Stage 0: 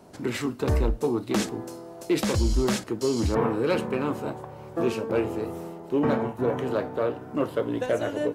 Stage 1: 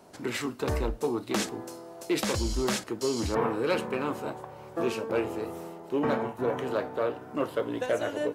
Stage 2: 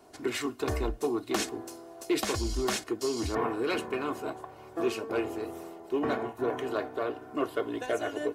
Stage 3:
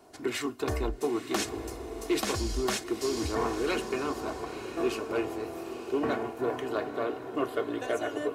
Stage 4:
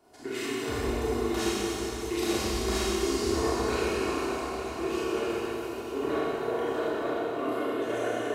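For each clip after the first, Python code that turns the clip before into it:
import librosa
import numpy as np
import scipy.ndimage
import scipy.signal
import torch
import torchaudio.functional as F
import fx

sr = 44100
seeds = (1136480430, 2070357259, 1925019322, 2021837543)

y1 = fx.low_shelf(x, sr, hz=350.0, db=-8.0)
y2 = y1 + 0.65 * np.pad(y1, (int(2.8 * sr / 1000.0), 0))[:len(y1)]
y2 = fx.hpss(y2, sr, part='percussive', gain_db=5)
y2 = F.gain(torch.from_numpy(y2), -5.5).numpy()
y3 = fx.echo_diffused(y2, sr, ms=926, feedback_pct=40, wet_db=-9.5)
y4 = fx.rev_schroeder(y3, sr, rt60_s=3.3, comb_ms=26, drr_db=-9.5)
y4 = F.gain(torch.from_numpy(y4), -8.0).numpy()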